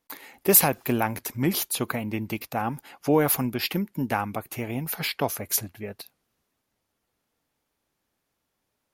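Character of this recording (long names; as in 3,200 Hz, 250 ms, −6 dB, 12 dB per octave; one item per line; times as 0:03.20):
background noise floor −79 dBFS
spectral slope −3.5 dB per octave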